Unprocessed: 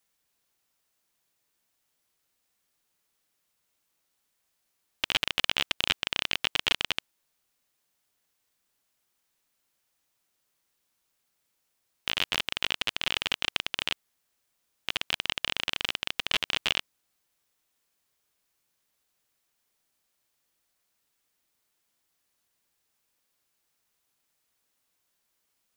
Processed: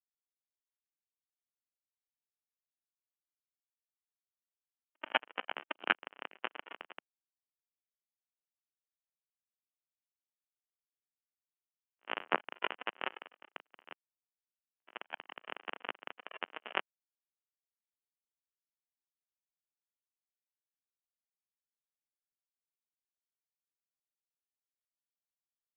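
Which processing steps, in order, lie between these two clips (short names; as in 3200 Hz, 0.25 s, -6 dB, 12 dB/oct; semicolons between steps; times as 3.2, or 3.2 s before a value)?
tremolo 5.6 Hz, depth 78%; AGC gain up to 11.5 dB; three-band isolator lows -24 dB, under 200 Hz, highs -23 dB, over 2000 Hz; pre-echo 84 ms -15.5 dB; spectral expander 2.5:1; gain +1 dB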